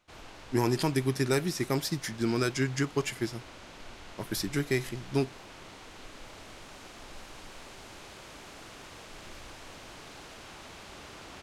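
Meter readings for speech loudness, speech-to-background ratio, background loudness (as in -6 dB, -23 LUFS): -30.5 LUFS, 17.0 dB, -47.5 LUFS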